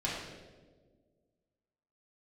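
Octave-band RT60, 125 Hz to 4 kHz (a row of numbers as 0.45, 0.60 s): 1.9, 2.1, 1.9, 1.2, 1.0, 0.95 s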